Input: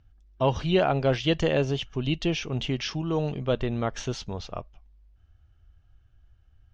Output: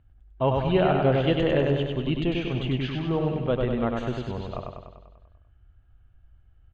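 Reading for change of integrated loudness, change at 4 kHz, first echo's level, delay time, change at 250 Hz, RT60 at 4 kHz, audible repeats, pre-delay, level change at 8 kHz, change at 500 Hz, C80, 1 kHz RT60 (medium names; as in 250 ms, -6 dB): +2.0 dB, -3.0 dB, -3.5 dB, 98 ms, +2.5 dB, no reverb, 8, no reverb, no reading, +2.0 dB, no reverb, no reverb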